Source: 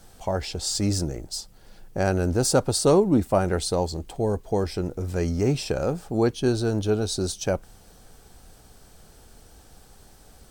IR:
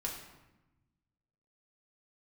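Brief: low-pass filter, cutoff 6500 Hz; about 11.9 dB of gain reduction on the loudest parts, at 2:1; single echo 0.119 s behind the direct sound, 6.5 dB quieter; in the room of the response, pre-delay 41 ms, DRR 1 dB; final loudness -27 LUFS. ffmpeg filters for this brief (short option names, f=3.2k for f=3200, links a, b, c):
-filter_complex "[0:a]lowpass=6.5k,acompressor=threshold=-37dB:ratio=2,aecho=1:1:119:0.473,asplit=2[a][b];[1:a]atrim=start_sample=2205,adelay=41[c];[b][c]afir=irnorm=-1:irlink=0,volume=-2.5dB[d];[a][d]amix=inputs=2:normalize=0,volume=4dB"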